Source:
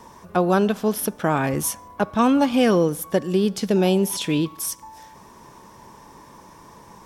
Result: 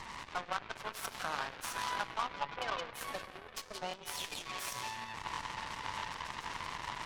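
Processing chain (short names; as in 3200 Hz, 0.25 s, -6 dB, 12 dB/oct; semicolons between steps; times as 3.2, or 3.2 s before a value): delta modulation 64 kbps, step -29 dBFS; spectral gate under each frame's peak -20 dB strong; HPF 960 Hz 24 dB/oct; tilt -3.5 dB/oct; compressor 2.5:1, threshold -37 dBFS, peak gain reduction 11.5 dB; soft clip -31 dBFS, distortion -16 dB; delay with a stepping band-pass 0.172 s, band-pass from 3500 Hz, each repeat -0.7 oct, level -1 dB; plate-style reverb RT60 2 s, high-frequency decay 0.6×, DRR 7 dB; added harmonics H 3 -11 dB, 6 -25 dB, 7 -37 dB, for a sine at -27 dBFS; stuck buffer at 2.57/3.89/5.33/5.97, samples 1024, times 1; gain +7.5 dB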